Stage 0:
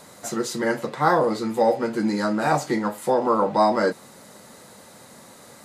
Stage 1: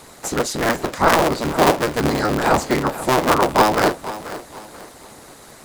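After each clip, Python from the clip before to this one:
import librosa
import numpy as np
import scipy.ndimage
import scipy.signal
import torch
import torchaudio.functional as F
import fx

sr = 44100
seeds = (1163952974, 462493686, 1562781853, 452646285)

y = fx.cycle_switch(x, sr, every=3, mode='inverted')
y = fx.hpss(y, sr, part='percussive', gain_db=6)
y = fx.echo_feedback(y, sr, ms=484, feedback_pct=34, wet_db=-14.5)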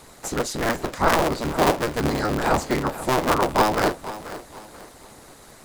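y = fx.low_shelf(x, sr, hz=61.0, db=9.0)
y = y * 10.0 ** (-4.5 / 20.0)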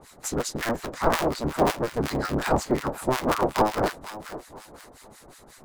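y = fx.harmonic_tremolo(x, sr, hz=5.5, depth_pct=100, crossover_hz=1100.0)
y = y * 10.0 ** (1.0 / 20.0)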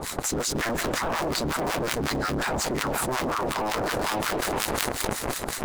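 y = fx.leveller(x, sr, passes=3)
y = y + 10.0 ** (-21.0 / 20.0) * np.pad(y, (int(155 * sr / 1000.0), 0))[:len(y)]
y = fx.env_flatten(y, sr, amount_pct=100)
y = y * 10.0 ** (-17.5 / 20.0)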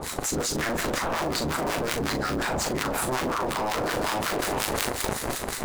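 y = fx.doubler(x, sr, ms=39.0, db=-7)
y = y * 10.0 ** (-1.0 / 20.0)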